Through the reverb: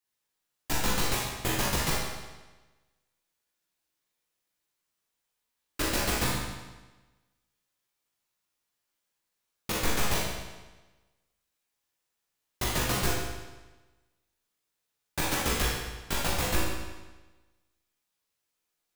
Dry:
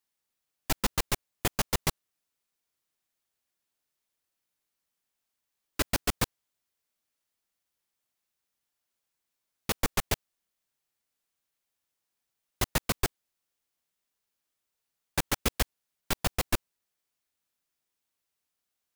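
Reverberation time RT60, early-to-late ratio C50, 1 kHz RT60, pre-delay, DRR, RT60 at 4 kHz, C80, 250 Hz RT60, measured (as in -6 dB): 1.2 s, -1.5 dB, 1.2 s, 16 ms, -6.5 dB, 1.1 s, 1.5 dB, 1.2 s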